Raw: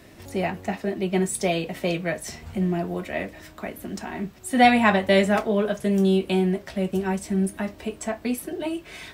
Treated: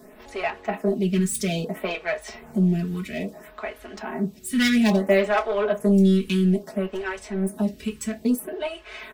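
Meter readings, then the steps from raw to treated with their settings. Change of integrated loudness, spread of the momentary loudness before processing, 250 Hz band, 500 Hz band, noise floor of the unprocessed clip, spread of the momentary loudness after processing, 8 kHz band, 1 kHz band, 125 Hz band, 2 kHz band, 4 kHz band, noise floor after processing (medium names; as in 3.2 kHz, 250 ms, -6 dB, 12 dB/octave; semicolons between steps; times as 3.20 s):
+0.5 dB, 14 LU, +2.0 dB, -0.5 dB, -48 dBFS, 14 LU, +0.5 dB, -6.5 dB, +2.5 dB, -2.0 dB, -0.5 dB, -48 dBFS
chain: self-modulated delay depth 0.11 ms; in parallel at -8 dB: wavefolder -22 dBFS; on the sum: comb 4.7 ms, depth 80%; lamp-driven phase shifter 0.6 Hz; trim -1 dB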